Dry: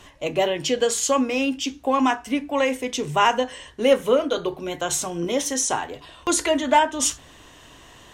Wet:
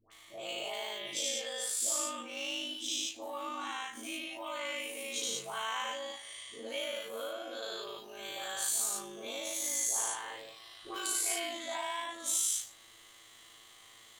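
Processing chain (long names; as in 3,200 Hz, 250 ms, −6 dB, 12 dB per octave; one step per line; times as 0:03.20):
every bin's largest magnitude spread in time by 120 ms
downward compressor 4 to 1, threshold −19 dBFS, peak gain reduction 10 dB
first-order pre-emphasis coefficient 0.9
hum removal 62.29 Hz, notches 3
all-pass dispersion highs, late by 68 ms, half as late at 750 Hz
time stretch by overlap-add 1.9×, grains 41 ms
bass and treble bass −6 dB, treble −8 dB
wrong playback speed 44.1 kHz file played as 48 kHz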